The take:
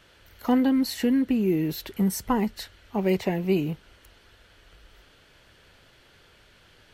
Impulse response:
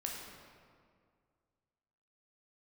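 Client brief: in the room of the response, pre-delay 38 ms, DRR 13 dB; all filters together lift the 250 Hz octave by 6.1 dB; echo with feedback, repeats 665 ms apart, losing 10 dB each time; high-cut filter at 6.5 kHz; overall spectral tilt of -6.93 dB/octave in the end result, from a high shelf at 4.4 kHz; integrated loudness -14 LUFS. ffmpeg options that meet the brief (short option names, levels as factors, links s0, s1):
-filter_complex "[0:a]lowpass=6500,equalizer=f=250:t=o:g=7,highshelf=f=4400:g=5,aecho=1:1:665|1330|1995|2660:0.316|0.101|0.0324|0.0104,asplit=2[s0][s1];[1:a]atrim=start_sample=2205,adelay=38[s2];[s1][s2]afir=irnorm=-1:irlink=0,volume=0.211[s3];[s0][s3]amix=inputs=2:normalize=0,volume=2"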